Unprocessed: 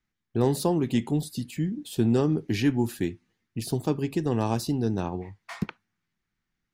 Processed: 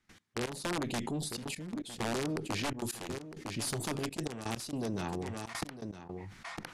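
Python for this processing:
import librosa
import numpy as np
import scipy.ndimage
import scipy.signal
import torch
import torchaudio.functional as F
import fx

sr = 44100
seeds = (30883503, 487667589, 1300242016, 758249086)

y = fx.high_shelf(x, sr, hz=4800.0, db=10.0, at=(2.79, 5.08))
y = fx.tube_stage(y, sr, drive_db=21.0, bias=0.75)
y = (np.mod(10.0 ** (22.5 / 20.0) * y + 1.0, 2.0) - 1.0) / 10.0 ** (22.5 / 20.0)
y = scipy.signal.sosfilt(scipy.signal.butter(4, 11000.0, 'lowpass', fs=sr, output='sos'), y)
y = fx.low_shelf(y, sr, hz=93.0, db=-8.0)
y = y + 10.0 ** (-17.0 / 20.0) * np.pad(y, (int(957 * sr / 1000.0), 0))[:len(y)]
y = fx.step_gate(y, sr, bpm=165, pattern='.x..x..xxxxxxxx', floor_db=-24.0, edge_ms=4.5)
y = fx.env_flatten(y, sr, amount_pct=70)
y = y * 10.0 ** (-5.5 / 20.0)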